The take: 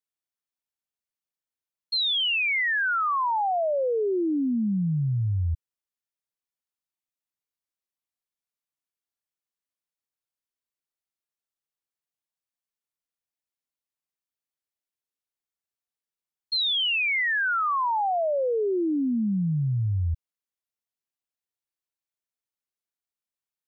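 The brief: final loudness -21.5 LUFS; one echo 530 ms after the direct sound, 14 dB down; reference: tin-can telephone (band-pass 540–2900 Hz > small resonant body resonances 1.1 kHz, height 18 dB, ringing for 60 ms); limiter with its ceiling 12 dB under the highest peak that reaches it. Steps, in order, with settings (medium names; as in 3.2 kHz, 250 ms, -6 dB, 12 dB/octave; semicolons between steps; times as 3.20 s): peak limiter -33.5 dBFS; band-pass 540–2900 Hz; delay 530 ms -14 dB; small resonant body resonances 1.1 kHz, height 18 dB, ringing for 60 ms; trim +12 dB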